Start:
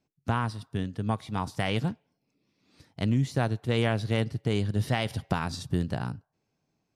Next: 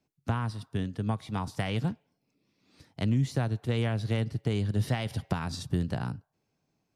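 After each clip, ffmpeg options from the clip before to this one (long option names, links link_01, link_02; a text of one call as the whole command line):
ffmpeg -i in.wav -filter_complex "[0:a]acrossover=split=200[link_01][link_02];[link_02]acompressor=threshold=-31dB:ratio=3[link_03];[link_01][link_03]amix=inputs=2:normalize=0" out.wav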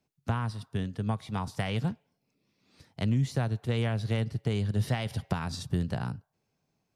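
ffmpeg -i in.wav -af "equalizer=frequency=300:width_type=o:width=0.33:gain=-5" out.wav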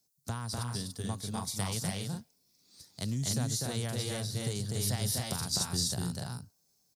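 ffmpeg -i in.wav -filter_complex "[0:a]aexciter=amount=10.2:drive=3.3:freq=4000,asplit=2[link_01][link_02];[link_02]aecho=0:1:247.8|288.6:0.794|0.631[link_03];[link_01][link_03]amix=inputs=2:normalize=0,volume=-7.5dB" out.wav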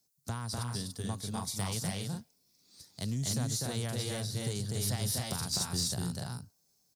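ffmpeg -i in.wav -af "asoftclip=type=tanh:threshold=-22.5dB" out.wav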